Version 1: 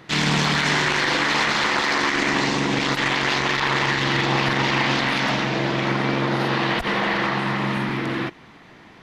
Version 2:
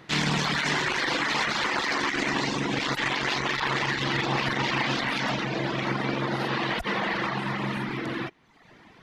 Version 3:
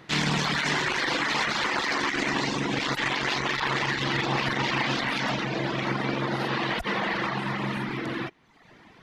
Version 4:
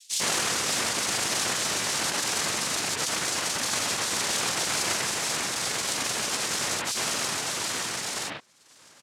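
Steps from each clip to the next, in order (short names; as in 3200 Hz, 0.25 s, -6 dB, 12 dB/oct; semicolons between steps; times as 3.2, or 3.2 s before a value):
reverb removal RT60 0.84 s; gain -3.5 dB
nothing audible
noise vocoder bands 1; bands offset in time highs, lows 0.1 s, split 3200 Hz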